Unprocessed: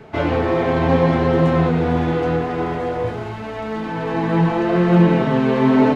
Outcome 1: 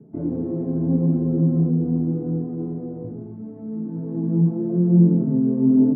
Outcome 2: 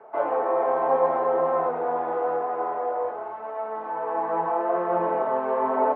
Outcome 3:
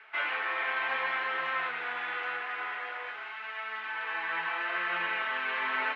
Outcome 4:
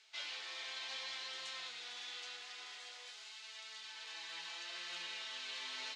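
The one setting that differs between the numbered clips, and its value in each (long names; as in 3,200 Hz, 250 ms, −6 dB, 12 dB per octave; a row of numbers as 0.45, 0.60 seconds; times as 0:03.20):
flat-topped band-pass, frequency: 210, 800, 2,000, 5,600 Hertz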